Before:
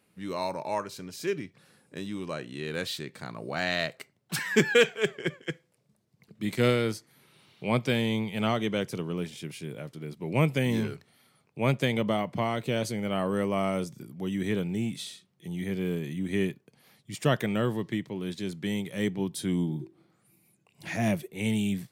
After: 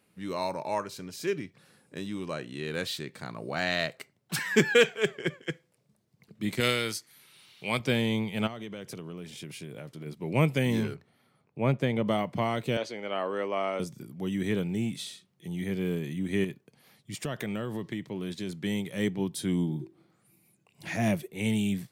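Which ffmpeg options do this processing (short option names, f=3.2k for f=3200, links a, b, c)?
-filter_complex "[0:a]asettb=1/sr,asplit=3[a][b][c];[a]atrim=end=6.604[d];[b]atrim=start=6.6:end=7.8,asetpts=PTS-STARTPTS,afade=t=in:d=0.004:c=qsin,afade=t=out:st=1.196:d=0.004:c=qsin,tiltshelf=f=1.3k:g=-7.5[e];[c]atrim=start=7.796[f];[d][e]acrossfade=d=0.004:c1=hsin:c2=qsin[g];[g][f]acrossfade=d=0.004:c1=qsin:c2=hsin,asplit=3[h][i][j];[h]afade=t=out:st=8.46:d=0.02[k];[i]acompressor=threshold=-36dB:ratio=6:attack=3.2:release=140:knee=1:detection=peak,afade=t=in:st=8.46:d=0.02,afade=t=out:st=10.05:d=0.02[l];[j]afade=t=in:st=10.05:d=0.02[m];[k][l][m]amix=inputs=3:normalize=0,asplit=3[n][o][p];[n]afade=t=out:st=10.93:d=0.02[q];[o]highshelf=f=2.6k:g=-12,afade=t=in:st=10.93:d=0.02,afade=t=out:st=12.05:d=0.02[r];[p]afade=t=in:st=12.05:d=0.02[s];[q][r][s]amix=inputs=3:normalize=0,asettb=1/sr,asplit=3[t][u][v];[t]atrim=end=12.774[w];[u]atrim=start=12.77:end=13.8,asetpts=PTS-STARTPTS,afade=t=in:d=0.004:c=qsin,afade=t=out:st=1.026:d=0.004:c=qsin,acrossover=split=310 5400:gain=0.0794 1 0.0708[x][y][z];[x][y][z]amix=inputs=3:normalize=0[aa];[v]atrim=start=13.796[ab];[w][aa]acrossfade=d=0.004:c1=hsin:c2=qsin[ac];[ac][ab]acrossfade=d=0.004:c1=qsin:c2=hsin,asettb=1/sr,asplit=3[ad][ae][af];[ad]atrim=end=16.444[ag];[ae]atrim=start=16.44:end=18.58,asetpts=PTS-STARTPTS,afade=t=in:d=0.004:c=qsin,afade=t=out:st=2.136:d=0.004:c=qsin,acompressor=threshold=-29dB:ratio=6:attack=3.2:release=140:knee=1:detection=peak[ah];[af]atrim=start=18.576[ai];[ag][ah]acrossfade=d=0.004:c1=hsin:c2=qsin[aj];[aj][ai]acrossfade=d=0.004:c1=qsin:c2=hsin"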